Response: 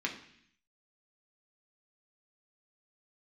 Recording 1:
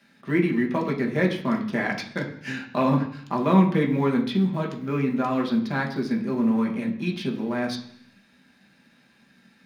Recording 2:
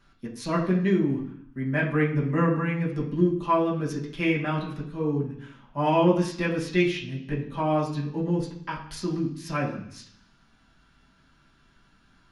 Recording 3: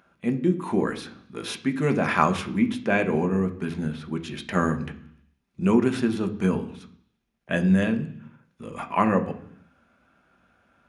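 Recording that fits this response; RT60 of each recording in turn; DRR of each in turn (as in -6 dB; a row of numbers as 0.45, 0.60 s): 1; 0.65, 0.65, 0.65 s; -0.5, -5.5, 6.0 dB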